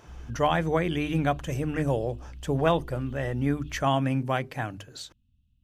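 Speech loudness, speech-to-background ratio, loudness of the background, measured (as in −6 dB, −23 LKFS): −28.0 LKFS, 17.5 dB, −45.5 LKFS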